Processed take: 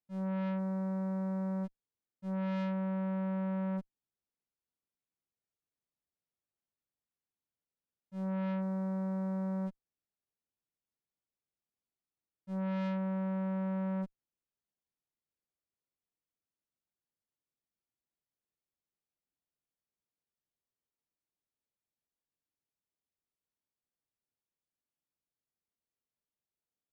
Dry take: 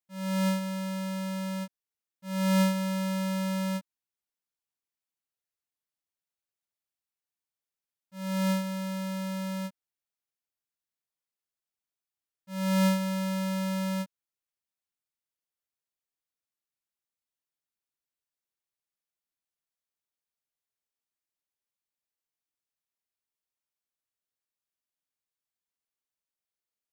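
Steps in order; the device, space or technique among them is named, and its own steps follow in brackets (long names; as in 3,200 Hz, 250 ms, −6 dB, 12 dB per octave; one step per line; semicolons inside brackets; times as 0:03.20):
low-pass filter 11,000 Hz 12 dB per octave
tilt shelving filter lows +8.5 dB, about 700 Hz
tube preamp driven hard (tube saturation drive 32 dB, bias 0.4; low-shelf EQ 140 Hz −4 dB; high-shelf EQ 6,100 Hz −5 dB)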